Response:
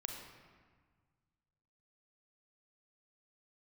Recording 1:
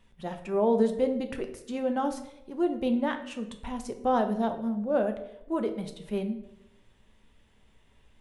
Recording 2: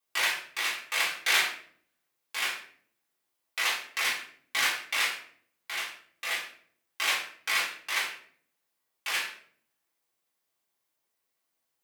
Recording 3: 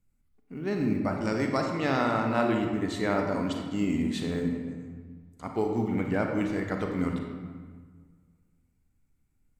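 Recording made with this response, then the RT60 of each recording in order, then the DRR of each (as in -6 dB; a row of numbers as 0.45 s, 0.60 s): 3; 0.90 s, 0.55 s, 1.6 s; 5.5 dB, -7.0 dB, 2.0 dB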